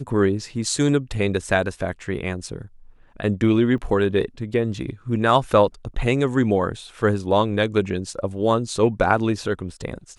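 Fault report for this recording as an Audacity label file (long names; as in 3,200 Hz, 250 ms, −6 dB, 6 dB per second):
3.780000	3.780000	drop-out 2.5 ms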